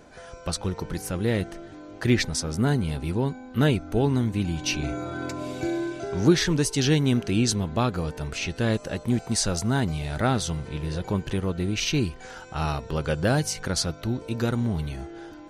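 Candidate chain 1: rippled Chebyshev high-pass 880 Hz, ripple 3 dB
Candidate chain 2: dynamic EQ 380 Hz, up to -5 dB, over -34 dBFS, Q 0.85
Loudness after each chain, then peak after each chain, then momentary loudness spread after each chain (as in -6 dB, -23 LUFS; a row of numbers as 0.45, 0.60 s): -33.5, -28.0 LUFS; -12.5, -10.0 dBFS; 15, 9 LU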